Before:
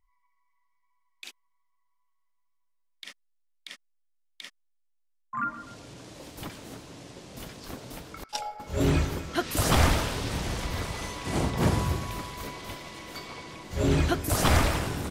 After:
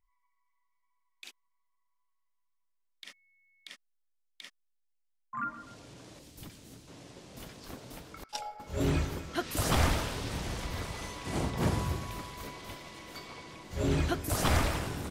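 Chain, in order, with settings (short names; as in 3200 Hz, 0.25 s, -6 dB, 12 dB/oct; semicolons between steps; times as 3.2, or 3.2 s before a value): 3.08–3.69 whine 2200 Hz -62 dBFS; 6.19–6.88 bell 950 Hz -10 dB 3 oct; gain -5 dB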